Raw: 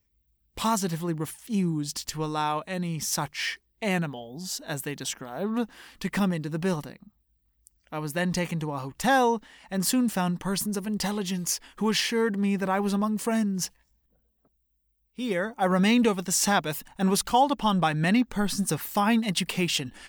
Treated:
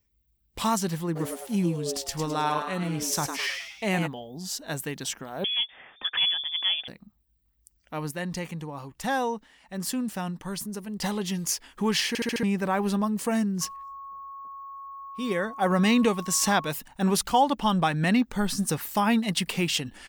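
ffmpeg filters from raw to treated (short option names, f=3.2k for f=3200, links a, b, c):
-filter_complex "[0:a]asplit=3[a][b][c];[a]afade=t=out:st=1.15:d=0.02[d];[b]asplit=6[e][f][g][h][i][j];[f]adelay=105,afreqshift=130,volume=-6.5dB[k];[g]adelay=210,afreqshift=260,volume=-13.4dB[l];[h]adelay=315,afreqshift=390,volume=-20.4dB[m];[i]adelay=420,afreqshift=520,volume=-27.3dB[n];[j]adelay=525,afreqshift=650,volume=-34.2dB[o];[e][k][l][m][n][o]amix=inputs=6:normalize=0,afade=t=in:st=1.15:d=0.02,afade=t=out:st=4.06:d=0.02[p];[c]afade=t=in:st=4.06:d=0.02[q];[d][p][q]amix=inputs=3:normalize=0,asettb=1/sr,asplit=3[r][s][t];[r]atrim=end=5.444[u];[s]atrim=start=5.44:end=6.88,asetpts=PTS-STARTPTS,afade=t=in:d=0.004:c=qsin,afade=t=out:st=1.436:d=0.004:c=qsin,lowpass=f=3.1k:t=q:w=0.5098,lowpass=f=3.1k:t=q:w=0.6013,lowpass=f=3.1k:t=q:w=0.9,lowpass=f=3.1k:t=q:w=2.563,afreqshift=-3600[v];[t]atrim=start=6.876[w];[u][v]acrossfade=d=0.004:c1=hsin:c2=qsin[x];[x][w]acrossfade=d=0.004:c1=qsin:c2=hsin,asettb=1/sr,asplit=3[y][z][aa];[y]atrim=end=13.614[ab];[z]atrim=start=13.61:end=16.7,asetpts=PTS-STARTPTS,afade=t=in:d=0.004:c=qsin,afade=t=out:st=3.086:d=0.004:c=qsin,aeval=exprs='val(0)+0.0126*sin(2*PI*1100*n/s)':c=same[ac];[aa]atrim=start=16.696[ad];[ab][ac]acrossfade=d=0.004:c1=hsin:c2=qsin[ae];[ae][ad]acrossfade=d=0.004:c1=qsin:c2=hsin,asplit=8[af][ag][ah][ai][aj][ak][al][am];[af]atrim=end=8.112[an];[ag]atrim=start=8.108:end=11.022,asetpts=PTS-STARTPTS,volume=-5.5dB[ao];[ah]atrim=start=11.018:end=12.152[ap];[ai]atrim=start=12.078:end=12.152[aq];[aj]atrim=start=12.078:end=12.152[ar];[ak]atrim=start=12.078:end=12.152[as];[al]atrim=start=12.078:end=12.152[at];[am]atrim=start=12.428[au];[an][ao]acrossfade=d=0.004:c1=hsin:c2=hsin[av];[av][ap]acrossfade=d=0.004:c1=hsin:c2=hsin[aw];[aw][aq]acrossfade=d=0.004:c1=hsin:c2=hsin[ax];[ax][ar]acrossfade=d=0.004:c1=hsin:c2=hsin[ay];[ay][as]acrossfade=d=0.004:c1=hsin:c2=hsin[az];[az][at]acrossfade=d=0.004:c1=hsin:c2=hsin[ba];[ba][au]acrossfade=d=0.004:c1=hsin:c2=hsin"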